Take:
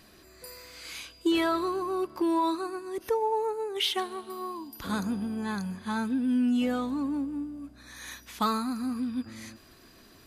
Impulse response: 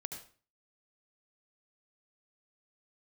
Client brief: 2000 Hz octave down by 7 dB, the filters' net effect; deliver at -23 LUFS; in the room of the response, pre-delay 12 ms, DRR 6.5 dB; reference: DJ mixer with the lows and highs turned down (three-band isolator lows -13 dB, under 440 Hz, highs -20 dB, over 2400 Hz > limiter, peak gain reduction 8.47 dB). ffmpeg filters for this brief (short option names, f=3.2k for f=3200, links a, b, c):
-filter_complex "[0:a]equalizer=f=2k:t=o:g=-6.5,asplit=2[a][b];[1:a]atrim=start_sample=2205,adelay=12[c];[b][c]afir=irnorm=-1:irlink=0,volume=-4.5dB[d];[a][d]amix=inputs=2:normalize=0,acrossover=split=440 2400:gain=0.224 1 0.1[e][f][g];[e][f][g]amix=inputs=3:normalize=0,volume=14dB,alimiter=limit=-12.5dB:level=0:latency=1"